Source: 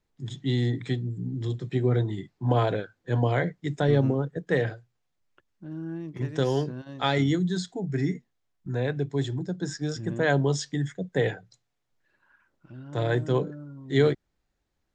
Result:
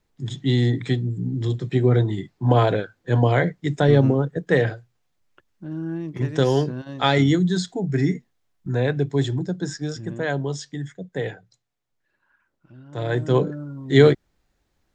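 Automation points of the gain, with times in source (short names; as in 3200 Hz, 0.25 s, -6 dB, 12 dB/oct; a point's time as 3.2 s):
9.37 s +6 dB
10.37 s -2.5 dB
12.91 s -2.5 dB
13.46 s +8 dB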